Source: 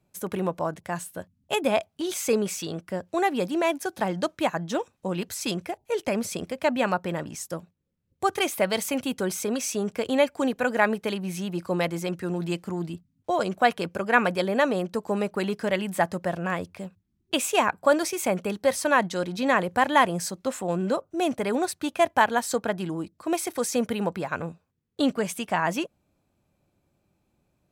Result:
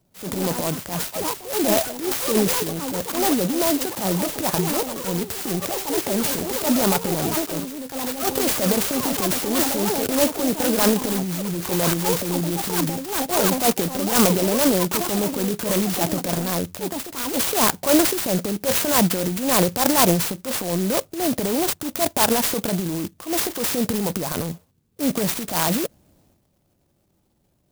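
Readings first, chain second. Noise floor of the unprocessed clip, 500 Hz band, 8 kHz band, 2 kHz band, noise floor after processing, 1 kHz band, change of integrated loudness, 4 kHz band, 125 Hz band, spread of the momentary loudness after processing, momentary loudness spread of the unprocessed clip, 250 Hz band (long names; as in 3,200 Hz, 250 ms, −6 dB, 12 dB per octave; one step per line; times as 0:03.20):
−74 dBFS, +2.5 dB, +10.5 dB, −1.5 dB, −66 dBFS, +0.5 dB, +5.5 dB, +8.0 dB, +7.0 dB, 8 LU, 10 LU, +6.0 dB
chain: transient designer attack −9 dB, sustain +9 dB
delay with pitch and tempo change per echo 119 ms, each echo +7 semitones, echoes 2, each echo −6 dB
converter with an unsteady clock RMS 0.15 ms
level +4.5 dB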